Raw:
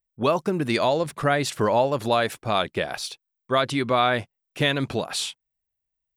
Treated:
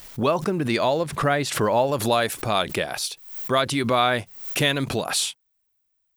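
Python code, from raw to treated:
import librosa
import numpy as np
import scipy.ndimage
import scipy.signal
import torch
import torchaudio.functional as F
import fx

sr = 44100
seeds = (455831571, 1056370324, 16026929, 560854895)

y = fx.high_shelf(x, sr, hz=7100.0, db=fx.steps((0.0, -2.0), (1.86, 11.5)))
y = fx.quant_companded(y, sr, bits=8)
y = fx.pre_swell(y, sr, db_per_s=87.0)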